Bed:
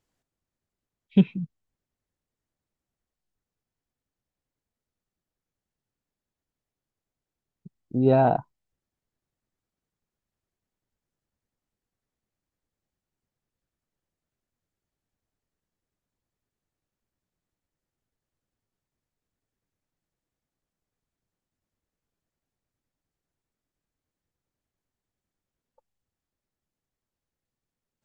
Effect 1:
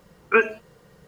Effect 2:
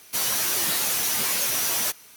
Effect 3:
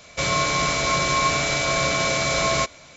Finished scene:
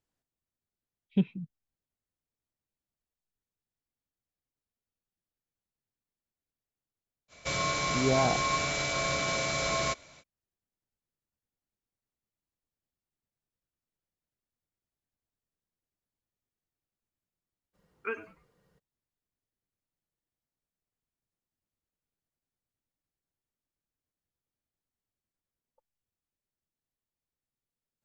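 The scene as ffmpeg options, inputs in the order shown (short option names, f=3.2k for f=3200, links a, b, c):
-filter_complex "[0:a]volume=-8dB[a];[1:a]asplit=4[b][c][d][e];[c]adelay=98,afreqshift=-130,volume=-17dB[f];[d]adelay=196,afreqshift=-260,volume=-26.6dB[g];[e]adelay=294,afreqshift=-390,volume=-36.3dB[h];[b][f][g][h]amix=inputs=4:normalize=0[i];[3:a]atrim=end=2.96,asetpts=PTS-STARTPTS,volume=-8.5dB,afade=t=in:d=0.05,afade=t=out:st=2.91:d=0.05,adelay=7280[j];[i]atrim=end=1.07,asetpts=PTS-STARTPTS,volume=-17.5dB,afade=t=in:d=0.02,afade=t=out:st=1.05:d=0.02,adelay=17730[k];[a][j][k]amix=inputs=3:normalize=0"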